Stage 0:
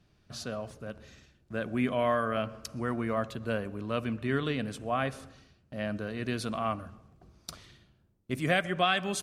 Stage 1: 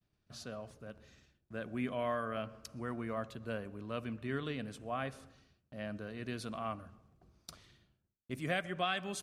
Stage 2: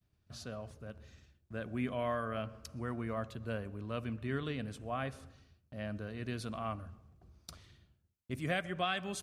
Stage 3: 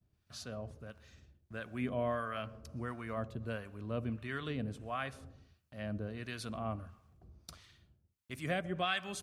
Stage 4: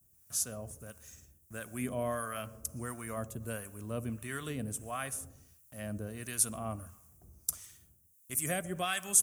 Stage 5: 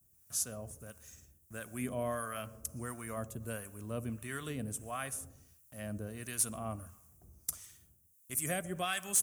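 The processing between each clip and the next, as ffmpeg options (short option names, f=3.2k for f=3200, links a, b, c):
-af "agate=range=-33dB:threshold=-60dB:ratio=3:detection=peak,volume=-8dB"
-af "equalizer=f=77:w=1.3:g=10"
-filter_complex "[0:a]acrossover=split=830[a][b];[a]aeval=exprs='val(0)*(1-0.7/2+0.7/2*cos(2*PI*1.5*n/s))':c=same[c];[b]aeval=exprs='val(0)*(1-0.7/2-0.7/2*cos(2*PI*1.5*n/s))':c=same[d];[c][d]amix=inputs=2:normalize=0,volume=3dB"
-af "aexciter=amount=15.7:drive=6.2:freq=6.4k"
-af "asoftclip=type=hard:threshold=-21.5dB,volume=-1.5dB"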